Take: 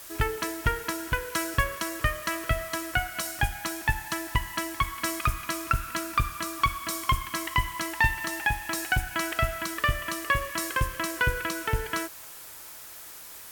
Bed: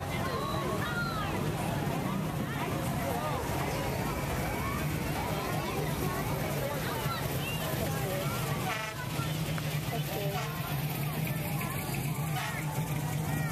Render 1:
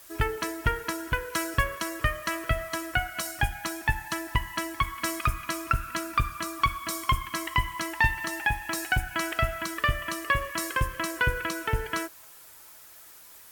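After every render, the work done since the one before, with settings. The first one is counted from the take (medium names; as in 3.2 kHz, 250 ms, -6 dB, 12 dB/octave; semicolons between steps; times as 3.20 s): noise reduction 7 dB, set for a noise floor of -44 dBFS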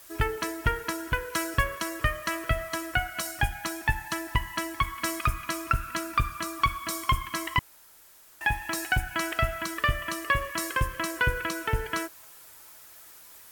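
7.59–8.41 s: room tone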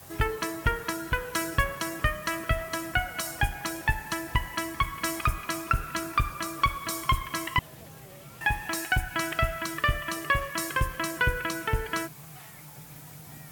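add bed -15.5 dB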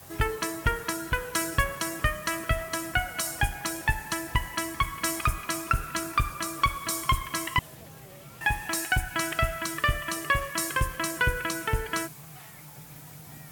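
dynamic bell 8.8 kHz, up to +5 dB, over -48 dBFS, Q 0.77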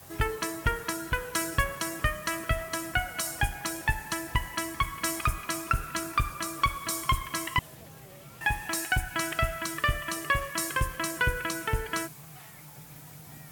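trim -1.5 dB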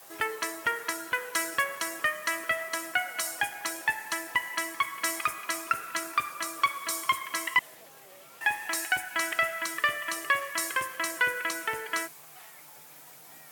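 high-pass 440 Hz 12 dB/octave; dynamic bell 2 kHz, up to +7 dB, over -48 dBFS, Q 5.7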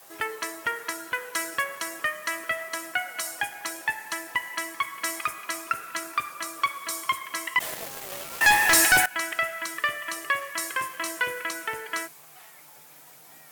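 7.60–9.06 s: waveshaping leveller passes 5; 10.77–11.43 s: doubling 24 ms -5.5 dB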